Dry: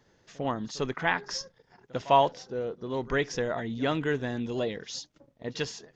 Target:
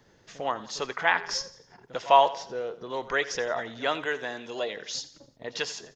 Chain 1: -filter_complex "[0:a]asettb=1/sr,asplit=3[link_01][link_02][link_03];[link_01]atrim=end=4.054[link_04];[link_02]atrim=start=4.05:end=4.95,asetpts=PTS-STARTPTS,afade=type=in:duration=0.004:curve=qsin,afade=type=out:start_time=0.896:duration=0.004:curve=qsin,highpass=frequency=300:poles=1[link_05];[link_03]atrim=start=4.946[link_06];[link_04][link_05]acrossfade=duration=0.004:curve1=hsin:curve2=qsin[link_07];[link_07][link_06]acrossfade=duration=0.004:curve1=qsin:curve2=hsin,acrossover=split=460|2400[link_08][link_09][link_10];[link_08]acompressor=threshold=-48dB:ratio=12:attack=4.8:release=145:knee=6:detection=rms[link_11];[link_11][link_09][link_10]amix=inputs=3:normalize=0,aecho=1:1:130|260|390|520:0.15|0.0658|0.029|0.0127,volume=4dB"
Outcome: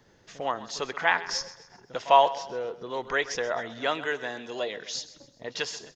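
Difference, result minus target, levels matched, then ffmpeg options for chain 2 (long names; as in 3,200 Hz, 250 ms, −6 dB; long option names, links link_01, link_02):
echo 44 ms late
-filter_complex "[0:a]asettb=1/sr,asplit=3[link_01][link_02][link_03];[link_01]atrim=end=4.054[link_04];[link_02]atrim=start=4.05:end=4.95,asetpts=PTS-STARTPTS,afade=type=in:duration=0.004:curve=qsin,afade=type=out:start_time=0.896:duration=0.004:curve=qsin,highpass=frequency=300:poles=1[link_05];[link_03]atrim=start=4.946[link_06];[link_04][link_05]acrossfade=duration=0.004:curve1=hsin:curve2=qsin[link_07];[link_07][link_06]acrossfade=duration=0.004:curve1=qsin:curve2=hsin,acrossover=split=460|2400[link_08][link_09][link_10];[link_08]acompressor=threshold=-48dB:ratio=12:attack=4.8:release=145:knee=6:detection=rms[link_11];[link_11][link_09][link_10]amix=inputs=3:normalize=0,aecho=1:1:86|172|258|344:0.15|0.0658|0.029|0.0127,volume=4dB"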